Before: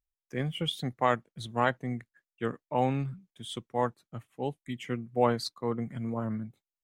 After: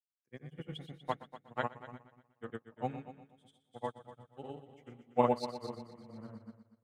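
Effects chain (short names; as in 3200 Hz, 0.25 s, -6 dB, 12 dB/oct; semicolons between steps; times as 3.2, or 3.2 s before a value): grains, pitch spread up and down by 0 st; multi-head echo 0.121 s, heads first and second, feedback 60%, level -8.5 dB; upward expander 2.5:1, over -44 dBFS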